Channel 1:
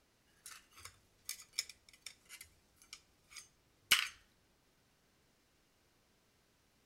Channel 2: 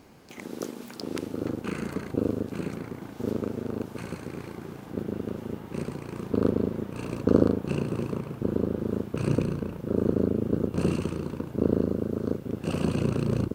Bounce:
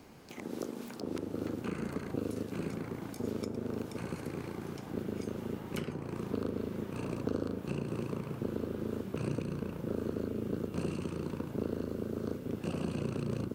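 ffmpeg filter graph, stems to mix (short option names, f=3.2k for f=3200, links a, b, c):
-filter_complex "[0:a]adelay=1850,volume=-1.5dB[a];[1:a]volume=-1dB[b];[a][b]amix=inputs=2:normalize=0,bandreject=f=63.45:t=h:w=4,bandreject=f=126.9:t=h:w=4,bandreject=f=190.35:t=h:w=4,bandreject=f=253.8:t=h:w=4,bandreject=f=317.25:t=h:w=4,bandreject=f=380.7:t=h:w=4,bandreject=f=444.15:t=h:w=4,bandreject=f=507.6:t=h:w=4,bandreject=f=571.05:t=h:w=4,bandreject=f=634.5:t=h:w=4,bandreject=f=697.95:t=h:w=4,bandreject=f=761.4:t=h:w=4,bandreject=f=824.85:t=h:w=4,bandreject=f=888.3:t=h:w=4,bandreject=f=951.75:t=h:w=4,bandreject=f=1.0152k:t=h:w=4,bandreject=f=1.07865k:t=h:w=4,bandreject=f=1.1421k:t=h:w=4,bandreject=f=1.20555k:t=h:w=4,bandreject=f=1.269k:t=h:w=4,bandreject=f=1.33245k:t=h:w=4,bandreject=f=1.3959k:t=h:w=4,bandreject=f=1.45935k:t=h:w=4,bandreject=f=1.5228k:t=h:w=4,bandreject=f=1.58625k:t=h:w=4,bandreject=f=1.6497k:t=h:w=4,bandreject=f=1.71315k:t=h:w=4,bandreject=f=1.7766k:t=h:w=4,bandreject=f=1.84005k:t=h:w=4,bandreject=f=1.9035k:t=h:w=4,acrossover=split=110|1300[c][d][e];[c]acompressor=threshold=-49dB:ratio=4[f];[d]acompressor=threshold=-33dB:ratio=4[g];[e]acompressor=threshold=-50dB:ratio=4[h];[f][g][h]amix=inputs=3:normalize=0"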